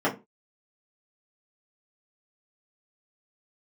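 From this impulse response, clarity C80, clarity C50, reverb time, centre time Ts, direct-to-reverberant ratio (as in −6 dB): 20.0 dB, 14.0 dB, 0.25 s, 18 ms, −7.0 dB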